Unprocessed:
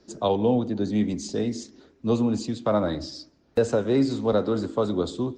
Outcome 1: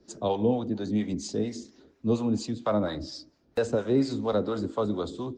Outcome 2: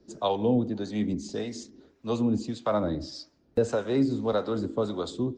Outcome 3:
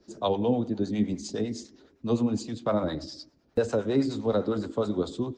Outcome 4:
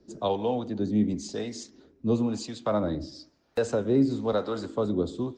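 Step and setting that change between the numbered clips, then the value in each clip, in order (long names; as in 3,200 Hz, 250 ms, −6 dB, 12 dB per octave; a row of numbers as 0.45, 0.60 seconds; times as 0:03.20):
two-band tremolo in antiphase, speed: 4.3, 1.7, 9.8, 1 Hertz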